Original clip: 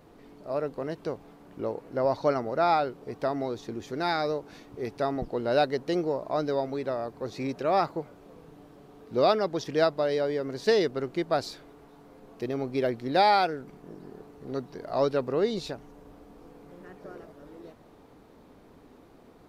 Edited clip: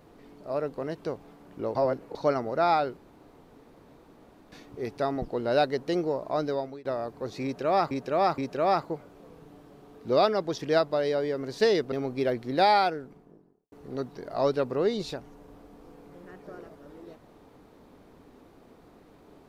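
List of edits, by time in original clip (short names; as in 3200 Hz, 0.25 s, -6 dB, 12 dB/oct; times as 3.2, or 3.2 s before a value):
1.75–2.15 reverse
2.97–4.52 room tone
6.35–6.85 fade out equal-power, to -23.5 dB
7.44–7.91 loop, 3 plays
10.98–12.49 cut
13.28–14.29 studio fade out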